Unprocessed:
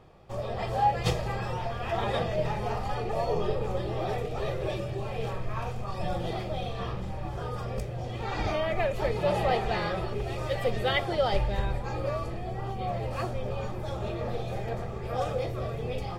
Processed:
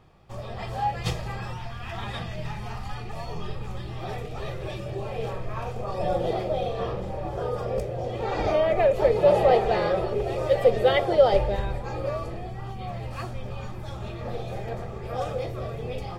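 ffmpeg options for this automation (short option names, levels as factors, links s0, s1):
-af "asetnsamples=n=441:p=0,asendcmd='1.53 equalizer g -14;4.03 equalizer g -5;4.86 equalizer g 3.5;5.76 equalizer g 10.5;11.56 equalizer g 2.5;12.47 equalizer g -7;14.25 equalizer g 0.5',equalizer=f=510:t=o:w=1.2:g=-6"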